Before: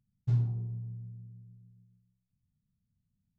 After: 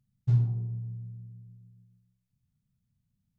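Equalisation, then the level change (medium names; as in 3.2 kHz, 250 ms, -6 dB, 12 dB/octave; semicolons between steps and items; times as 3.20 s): peaking EQ 130 Hz +5.5 dB 0.21 oct; +1.5 dB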